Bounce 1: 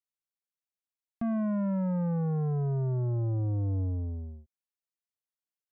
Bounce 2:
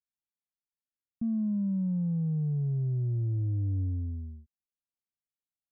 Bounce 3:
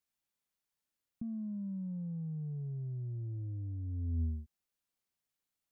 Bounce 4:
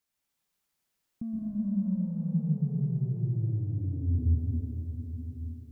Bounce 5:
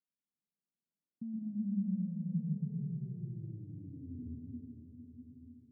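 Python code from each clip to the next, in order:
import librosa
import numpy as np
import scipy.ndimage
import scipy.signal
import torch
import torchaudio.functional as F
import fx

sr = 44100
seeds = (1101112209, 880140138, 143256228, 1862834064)

y1 = fx.curve_eq(x, sr, hz=(260.0, 570.0, 1700.0), db=(0, -19, -29))
y2 = fx.over_compress(y1, sr, threshold_db=-37.0, ratio=-1.0)
y2 = y2 * 10.0 ** (-1.0 / 20.0)
y3 = fx.rev_plate(y2, sr, seeds[0], rt60_s=4.9, hf_ratio=0.85, predelay_ms=105, drr_db=-3.5)
y3 = y3 * 10.0 ** (4.0 / 20.0)
y4 = fx.ladder_bandpass(y3, sr, hz=230.0, resonance_pct=40)
y4 = y4 * 10.0 ** (1.5 / 20.0)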